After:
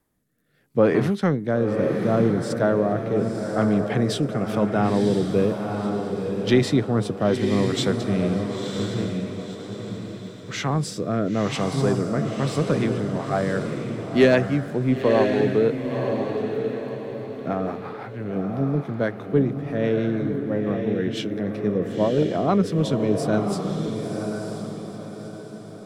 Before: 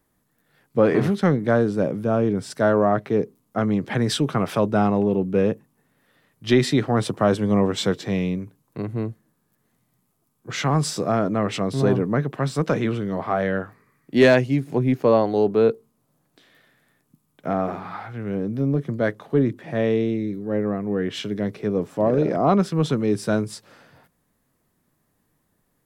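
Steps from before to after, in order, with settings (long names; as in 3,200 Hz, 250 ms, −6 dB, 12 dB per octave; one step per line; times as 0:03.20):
rotating-speaker cabinet horn 0.75 Hz, later 6 Hz, at 0:12.16
feedback delay with all-pass diffusion 992 ms, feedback 42%, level −5 dB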